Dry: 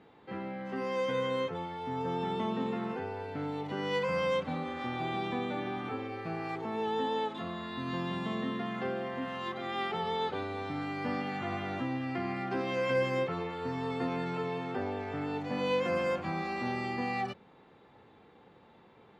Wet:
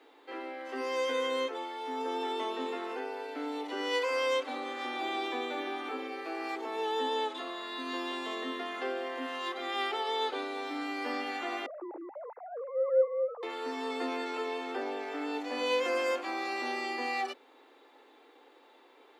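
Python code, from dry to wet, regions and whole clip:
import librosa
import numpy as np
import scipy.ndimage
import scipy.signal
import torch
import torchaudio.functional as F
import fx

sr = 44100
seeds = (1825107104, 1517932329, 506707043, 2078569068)

y = fx.chain(x, sr, fx.sine_speech(),
    fx.lowpass(hz=1000.0, slope=24), at=(11.66, 13.43))
y = scipy.signal.sosfilt(scipy.signal.butter(16, 260.0, 'highpass', fs=sr, output='sos'), y)
y = fx.high_shelf(y, sr, hz=3800.0, db=11.5)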